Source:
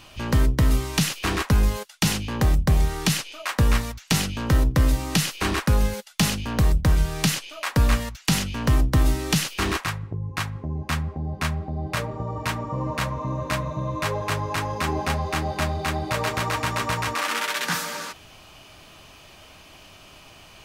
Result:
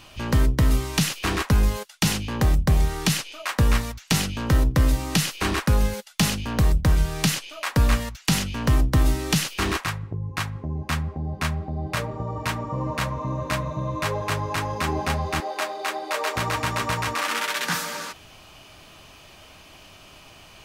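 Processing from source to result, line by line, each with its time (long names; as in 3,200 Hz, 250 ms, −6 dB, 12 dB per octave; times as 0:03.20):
0:15.40–0:16.36: high-pass filter 370 Hz 24 dB per octave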